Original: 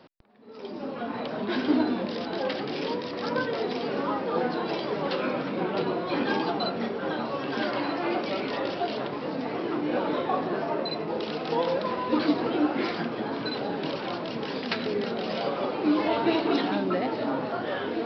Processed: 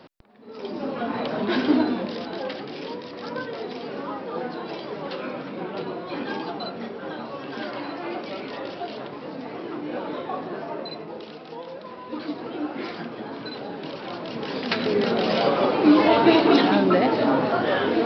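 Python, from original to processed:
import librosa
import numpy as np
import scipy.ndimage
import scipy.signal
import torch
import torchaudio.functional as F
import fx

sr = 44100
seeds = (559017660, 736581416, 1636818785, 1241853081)

y = fx.gain(x, sr, db=fx.line((1.54, 5.0), (2.71, -3.5), (10.9, -3.5), (11.63, -11.5), (12.89, -3.5), (13.91, -3.5), (15.13, 8.0)))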